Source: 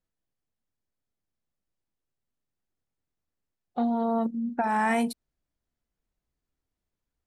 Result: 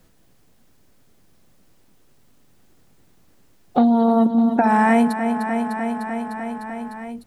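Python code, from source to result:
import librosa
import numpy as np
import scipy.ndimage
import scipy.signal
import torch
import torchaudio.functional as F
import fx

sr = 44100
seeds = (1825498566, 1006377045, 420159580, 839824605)

p1 = fx.low_shelf(x, sr, hz=460.0, db=6.5)
p2 = p1 + fx.echo_feedback(p1, sr, ms=301, feedback_pct=60, wet_db=-11.5, dry=0)
p3 = fx.band_squash(p2, sr, depth_pct=70)
y = F.gain(torch.from_numpy(p3), 6.5).numpy()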